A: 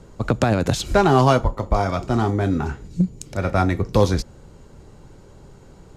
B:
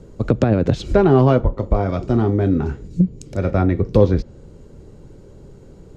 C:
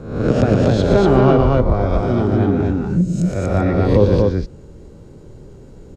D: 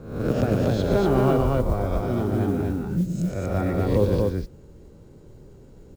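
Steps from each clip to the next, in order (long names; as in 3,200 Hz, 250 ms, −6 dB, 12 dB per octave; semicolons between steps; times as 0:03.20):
treble cut that deepens with the level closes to 2,800 Hz, closed at −14.5 dBFS; low shelf with overshoot 630 Hz +6.5 dB, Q 1.5; level −3.5 dB
peak hold with a rise ahead of every peak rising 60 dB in 0.69 s; on a send: loudspeakers that aren't time-aligned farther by 40 metres −7 dB, 82 metres −2 dB; on the sum: level −2 dB
noise that follows the level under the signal 31 dB; level −7.5 dB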